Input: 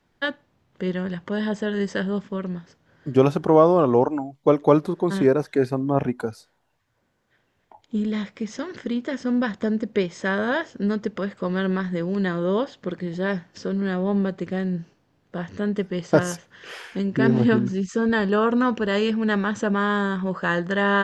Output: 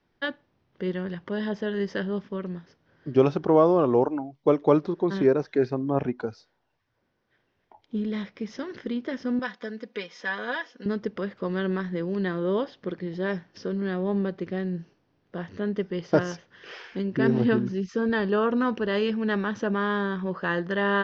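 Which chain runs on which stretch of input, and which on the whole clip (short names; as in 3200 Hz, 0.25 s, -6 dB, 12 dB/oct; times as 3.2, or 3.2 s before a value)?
9.39–10.86 HPF 1100 Hz 6 dB/oct + comb 4.1 ms, depth 68%
whole clip: elliptic low-pass 5700 Hz, stop band 50 dB; bell 370 Hz +3.5 dB 0.74 oct; gain -4 dB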